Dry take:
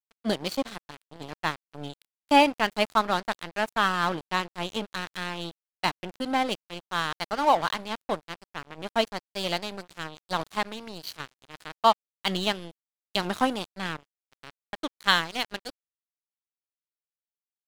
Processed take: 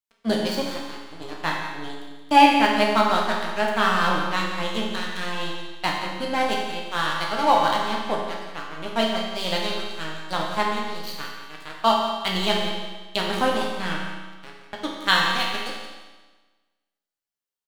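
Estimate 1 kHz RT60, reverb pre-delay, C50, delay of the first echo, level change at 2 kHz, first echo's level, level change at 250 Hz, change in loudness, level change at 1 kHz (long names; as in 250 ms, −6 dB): 1.3 s, 10 ms, 1.0 dB, 175 ms, +5.0 dB, −10.5 dB, +5.0 dB, +4.5 dB, +5.0 dB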